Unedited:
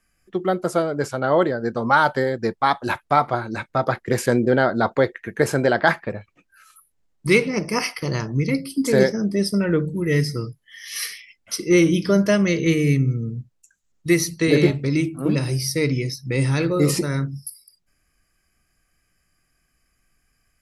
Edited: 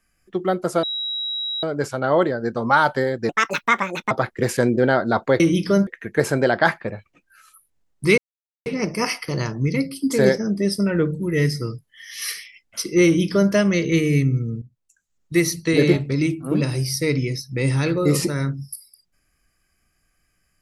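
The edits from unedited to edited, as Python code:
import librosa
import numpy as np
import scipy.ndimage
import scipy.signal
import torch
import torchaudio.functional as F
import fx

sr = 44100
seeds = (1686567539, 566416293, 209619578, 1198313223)

y = fx.edit(x, sr, fx.insert_tone(at_s=0.83, length_s=0.8, hz=3860.0, db=-23.5),
    fx.speed_span(start_s=2.49, length_s=1.31, speed=1.6),
    fx.insert_silence(at_s=7.4, length_s=0.48),
    fx.duplicate(start_s=11.79, length_s=0.47, to_s=5.09),
    fx.fade_in_from(start_s=13.36, length_s=1.02, curve='qsin', floor_db=-16.0), tone=tone)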